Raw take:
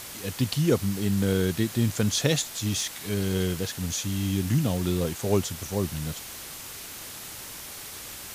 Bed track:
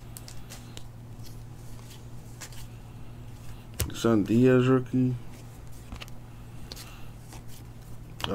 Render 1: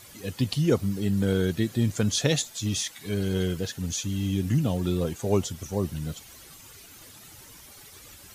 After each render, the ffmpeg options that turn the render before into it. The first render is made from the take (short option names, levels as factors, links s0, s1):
-af "afftdn=nr=12:nf=-40"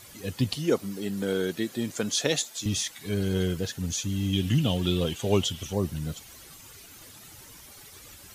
-filter_complex "[0:a]asettb=1/sr,asplit=3[s0][s1][s2];[s0]atrim=end=0.564[s3];[s1]atrim=start=0.56:end=2.66,asetpts=PTS-STARTPTS,afade=t=in:d=0.004:c=qsin,afade=t=out:st=2.096:d=0.004:c=qsin,highpass=260[s4];[s2]atrim=start=2.656[s5];[s3][s4]acrossfade=d=0.004:c1=hsin:c2=qsin[s6];[s6][s5]acrossfade=d=0.004:c1=qsin:c2=hsin,asettb=1/sr,asplit=3[s7][s8][s9];[s7]atrim=end=4.334[s10];[s8]atrim=start=4.33:end=5.73,asetpts=PTS-STARTPTS,afade=t=in:d=0.004:c=qsin,afade=t=out:st=1.396:d=0.004:c=qsin,equalizer=f=3100:t=o:w=0.58:g=14.5[s11];[s9]atrim=start=5.726[s12];[s10][s11]acrossfade=d=0.004:c1=hsin:c2=qsin[s13];[s13][s12]acrossfade=d=0.004:c1=qsin:c2=hsin"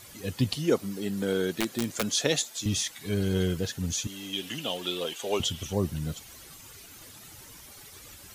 -filter_complex "[0:a]asettb=1/sr,asplit=3[s0][s1][s2];[s0]atrim=end=1.594[s3];[s1]atrim=start=1.59:end=2.12,asetpts=PTS-STARTPTS,afade=t=in:d=0.004:c=qsin,afade=t=out:st=0.526:d=0.004:c=qsin,aeval=exprs='(mod(8.41*val(0)+1,2)-1)/8.41':c=same[s4];[s2]atrim=start=2.116[s5];[s3][s4]acrossfade=d=0.004:c1=hsin:c2=qsin[s6];[s6][s5]acrossfade=d=0.004:c1=qsin:c2=hsin,asettb=1/sr,asplit=3[s7][s8][s9];[s7]atrim=end=4.074[s10];[s8]atrim=start=4.07:end=5.4,asetpts=PTS-STARTPTS,afade=t=in:d=0.004:c=qsin,afade=t=out:st=1.326:d=0.004:c=qsin,highpass=460[s11];[s9]atrim=start=5.396[s12];[s10][s11]acrossfade=d=0.004:c1=hsin:c2=qsin[s13];[s13][s12]acrossfade=d=0.004:c1=qsin:c2=hsin"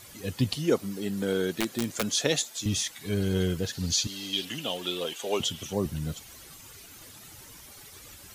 -filter_complex "[0:a]asettb=1/sr,asplit=3[s0][s1][s2];[s0]atrim=end=3.734[s3];[s1]atrim=start=3.73:end=4.45,asetpts=PTS-STARTPTS,afade=t=in:d=0.004:c=qsin,afade=t=out:st=0.716:d=0.004:c=qsin,equalizer=f=4500:t=o:w=0.55:g=13.5[s4];[s2]atrim=start=4.446[s5];[s3][s4]acrossfade=d=0.004:c1=hsin:c2=qsin[s6];[s6][s5]acrossfade=d=0.004:c1=qsin:c2=hsin,asettb=1/sr,asplit=3[s7][s8][s9];[s7]atrim=end=5.134[s10];[s8]atrim=start=5.13:end=5.86,asetpts=PTS-STARTPTS,afade=t=in:d=0.004:c=qsin,afade=t=out:st=0.726:d=0.004:c=qsin,highpass=130[s11];[s9]atrim=start=5.856[s12];[s10][s11]acrossfade=d=0.004:c1=hsin:c2=qsin[s13];[s13][s12]acrossfade=d=0.004:c1=qsin:c2=hsin"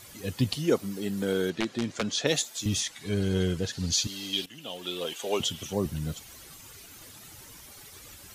-filter_complex "[0:a]asettb=1/sr,asplit=3[s0][s1][s2];[s0]atrim=end=1.504[s3];[s1]atrim=start=1.5:end=2.27,asetpts=PTS-STARTPTS,afade=t=in:d=0.004:c=qsin,afade=t=out:st=0.766:d=0.004:c=qsin,lowpass=5100[s4];[s2]atrim=start=2.266[s5];[s3][s4]acrossfade=d=0.004:c1=hsin:c2=qsin[s6];[s6][s5]acrossfade=d=0.004:c1=qsin:c2=hsin,asettb=1/sr,asplit=3[s7][s8][s9];[s7]atrim=end=2.804[s10];[s8]atrim=start=2.8:end=3.93,asetpts=PTS-STARTPTS,afade=t=in:d=0.004:c=qsin,afade=t=out:st=1.126:d=0.004:c=qsin,lowpass=9500[s11];[s9]atrim=start=3.926[s12];[s10][s11]acrossfade=d=0.004:c1=hsin:c2=qsin[s13];[s13][s12]acrossfade=d=0.004:c1=qsin:c2=hsin,asplit=2[s14][s15];[s14]atrim=end=4.46,asetpts=PTS-STARTPTS,afade=t=out:st=4.456:d=0.004:c=hsin:silence=0.158489[s16];[s15]atrim=start=4.46,asetpts=PTS-STARTPTS,afade=t=in:d=0.66:silence=0.158489[s17];[s16][s17]concat=n=2:v=0:a=1"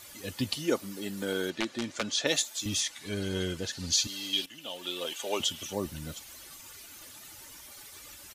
-af "lowshelf=f=410:g=-7.5,aecho=1:1:3.4:0.31"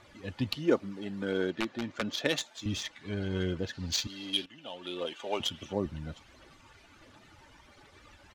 -af "aphaser=in_gain=1:out_gain=1:delay=1.4:decay=0.28:speed=1.4:type=triangular,adynamicsmooth=sensitivity=1.5:basefreq=2400"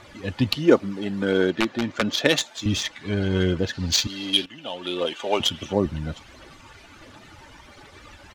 -af "volume=3.16"